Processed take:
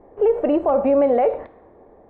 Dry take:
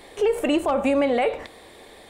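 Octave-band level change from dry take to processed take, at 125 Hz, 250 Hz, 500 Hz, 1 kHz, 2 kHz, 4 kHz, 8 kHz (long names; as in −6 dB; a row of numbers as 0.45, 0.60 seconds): can't be measured, +1.5 dB, +5.0 dB, +3.0 dB, −10.5 dB, below −15 dB, below −35 dB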